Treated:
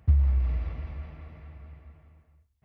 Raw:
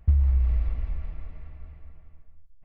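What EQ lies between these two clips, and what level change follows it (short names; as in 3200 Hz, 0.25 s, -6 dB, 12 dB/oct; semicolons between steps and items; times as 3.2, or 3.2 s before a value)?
HPF 71 Hz 24 dB/oct; +2.5 dB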